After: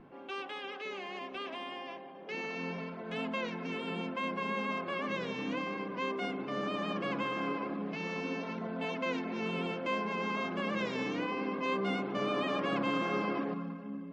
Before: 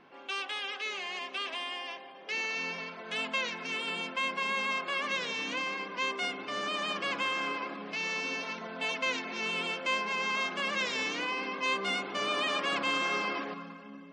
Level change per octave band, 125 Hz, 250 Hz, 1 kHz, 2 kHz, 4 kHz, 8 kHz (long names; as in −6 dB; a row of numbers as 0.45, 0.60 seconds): +9.0, +7.0, −2.5, −7.0, −9.5, −14.0 decibels